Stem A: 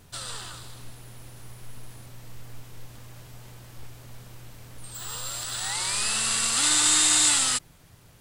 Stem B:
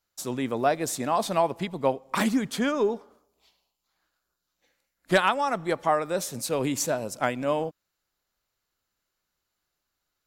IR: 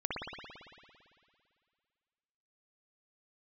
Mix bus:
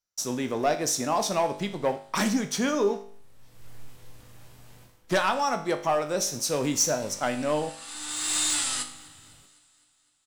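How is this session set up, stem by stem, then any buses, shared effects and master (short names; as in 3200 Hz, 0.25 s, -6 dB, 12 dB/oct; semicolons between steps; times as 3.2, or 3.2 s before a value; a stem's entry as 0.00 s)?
0.0 dB, 1.25 s, send -19.5 dB, echo send -22.5 dB, hard clip -14 dBFS, distortion -22 dB; auto duck -24 dB, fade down 0.25 s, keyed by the second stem
-1.5 dB, 0.00 s, no send, no echo send, bell 5800 Hz +13.5 dB 0.34 oct; sample leveller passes 2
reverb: on, RT60 2.2 s, pre-delay 56 ms
echo: feedback echo 0.254 s, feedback 59%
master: resonator 50 Hz, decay 0.51 s, harmonics all, mix 70%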